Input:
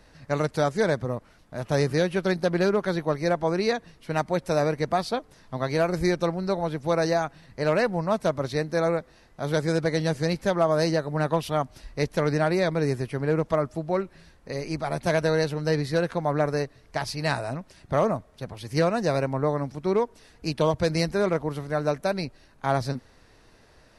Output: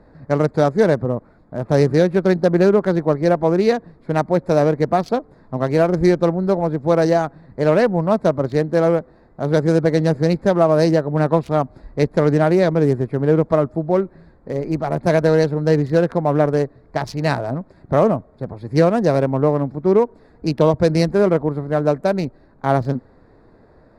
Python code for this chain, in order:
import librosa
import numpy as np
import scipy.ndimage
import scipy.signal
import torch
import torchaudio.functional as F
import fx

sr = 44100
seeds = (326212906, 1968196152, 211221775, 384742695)

y = fx.wiener(x, sr, points=15)
y = fx.peak_eq(y, sr, hz=290.0, db=7.0, octaves=3.0)
y = y * 10.0 ** (3.0 / 20.0)